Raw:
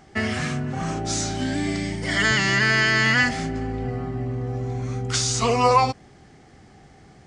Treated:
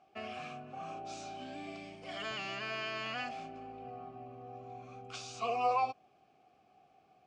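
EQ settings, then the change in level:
formant filter a
parametric band 900 Hz −8.5 dB 1.8 octaves
+2.0 dB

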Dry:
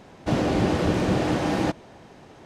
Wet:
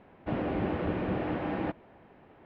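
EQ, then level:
low-pass filter 2,700 Hz 24 dB per octave
parametric band 130 Hz −3.5 dB 0.61 octaves
−8.0 dB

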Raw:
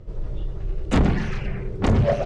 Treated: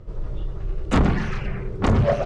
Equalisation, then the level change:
parametric band 1,200 Hz +5 dB 0.76 octaves
0.0 dB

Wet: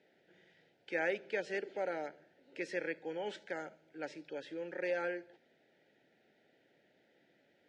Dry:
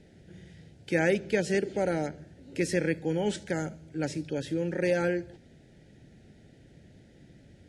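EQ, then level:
band-pass filter 520–3,300 Hz
−5.5 dB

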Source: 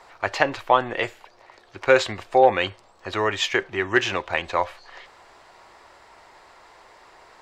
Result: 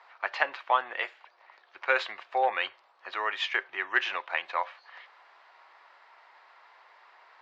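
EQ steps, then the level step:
high-pass filter 990 Hz 12 dB per octave
high-frequency loss of the air 250 metres
−1.5 dB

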